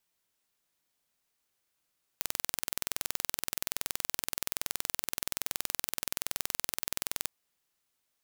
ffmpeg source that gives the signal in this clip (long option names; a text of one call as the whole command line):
ffmpeg -f lavfi -i "aevalsrc='0.668*eq(mod(n,2080),0)':duration=5.08:sample_rate=44100" out.wav